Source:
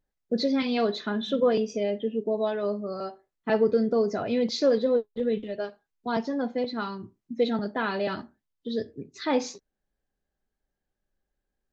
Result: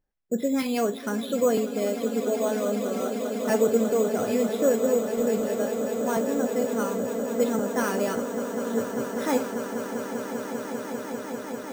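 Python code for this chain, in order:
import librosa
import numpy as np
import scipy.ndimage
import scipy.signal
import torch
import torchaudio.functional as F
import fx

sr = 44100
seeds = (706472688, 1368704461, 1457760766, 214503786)

y = np.repeat(scipy.signal.resample_poly(x, 1, 6), 6)[:len(x)]
y = fx.echo_swell(y, sr, ms=198, loudest=8, wet_db=-13)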